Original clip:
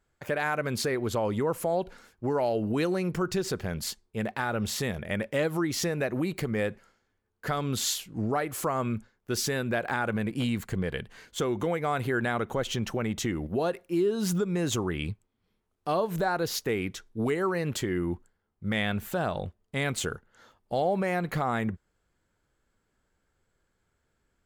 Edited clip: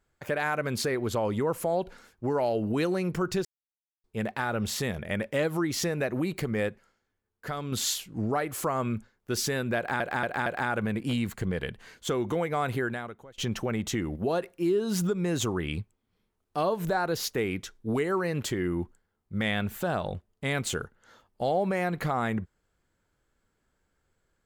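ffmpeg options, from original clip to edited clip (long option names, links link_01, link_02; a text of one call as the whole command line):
ffmpeg -i in.wav -filter_complex "[0:a]asplit=9[link_01][link_02][link_03][link_04][link_05][link_06][link_07][link_08][link_09];[link_01]atrim=end=3.45,asetpts=PTS-STARTPTS,afade=type=out:start_time=3.446:duration=0.004:curve=hsin[link_10];[link_02]atrim=start=3.45:end=4.04,asetpts=PTS-STARTPTS,volume=0[link_11];[link_03]atrim=start=4.04:end=6.692,asetpts=PTS-STARTPTS,afade=type=in:duration=0.004:curve=hsin[link_12];[link_04]atrim=start=6.688:end=7.722,asetpts=PTS-STARTPTS,volume=-4.5dB[link_13];[link_05]atrim=start=7.718:end=10.002[link_14];[link_06]atrim=start=9.768:end=10.002[link_15];[link_07]atrim=start=9.768:end=10.002[link_16];[link_08]atrim=start=9.768:end=12.69,asetpts=PTS-STARTPTS,afade=type=out:start_time=2.312:duration=0.61:curve=qua:silence=0.0668344[link_17];[link_09]atrim=start=12.69,asetpts=PTS-STARTPTS,afade=type=in:duration=0.004:curve=hsin:silence=0.0668344[link_18];[link_10][link_11][link_12]concat=n=3:v=0:a=1[link_19];[link_19][link_13]acrossfade=duration=0.004:curve1=hsin:curve2=hsin[link_20];[link_20][link_14]acrossfade=duration=0.004:curve1=hsin:curve2=hsin[link_21];[link_21][link_15]acrossfade=duration=0.004:curve1=hsin:curve2=hsin[link_22];[link_22][link_16]acrossfade=duration=0.004:curve1=hsin:curve2=hsin[link_23];[link_17][link_18]concat=n=2:v=0:a=1[link_24];[link_23][link_24]acrossfade=duration=0.004:curve1=hsin:curve2=hsin" out.wav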